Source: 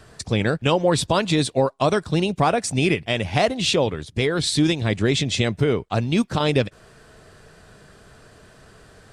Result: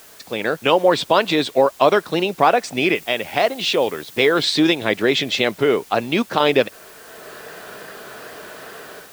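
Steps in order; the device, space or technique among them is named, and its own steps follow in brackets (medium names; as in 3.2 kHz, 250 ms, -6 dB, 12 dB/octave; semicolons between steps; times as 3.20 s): dictaphone (band-pass 360–3800 Hz; level rider gain up to 16 dB; wow and flutter; white noise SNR 26 dB); 2.95–4.44 s: treble shelf 7.9 kHz +5 dB; trim -1 dB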